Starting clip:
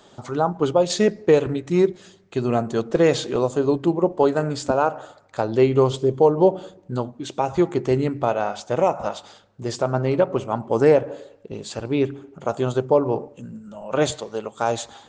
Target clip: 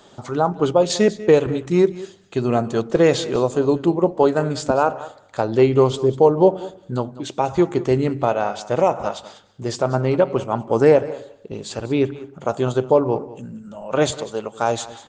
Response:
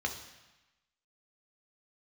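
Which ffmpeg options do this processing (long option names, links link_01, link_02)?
-af "aecho=1:1:194:0.133,volume=2dB"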